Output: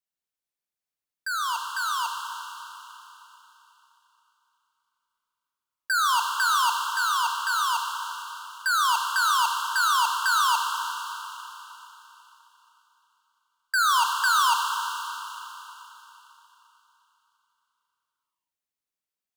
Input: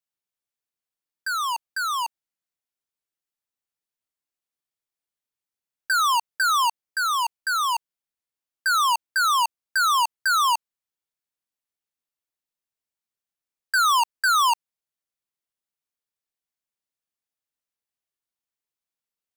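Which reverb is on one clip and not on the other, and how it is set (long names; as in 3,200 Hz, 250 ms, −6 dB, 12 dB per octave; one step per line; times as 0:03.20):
four-comb reverb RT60 3.6 s, combs from 30 ms, DRR 2.5 dB
level −3 dB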